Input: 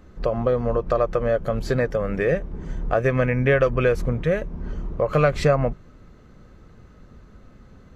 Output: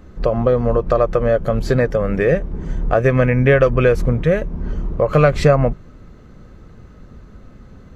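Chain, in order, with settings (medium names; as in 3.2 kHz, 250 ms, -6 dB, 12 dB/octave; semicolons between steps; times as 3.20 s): bass shelf 490 Hz +3 dB; trim +4 dB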